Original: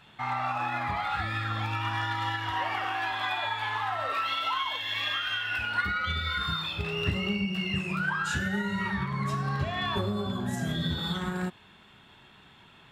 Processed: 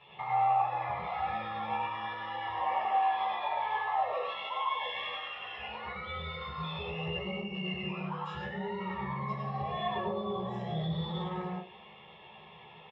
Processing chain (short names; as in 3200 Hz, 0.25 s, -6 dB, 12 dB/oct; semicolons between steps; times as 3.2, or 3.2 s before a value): compressor, threshold -33 dBFS, peak gain reduction 10.5 dB; LPF 3500 Hz 24 dB/oct; fixed phaser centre 630 Hz, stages 4; doubler 14 ms -5 dB; reverb RT60 0.30 s, pre-delay 96 ms, DRR -2 dB; dynamic EQ 2700 Hz, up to -6 dB, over -49 dBFS, Q 1.4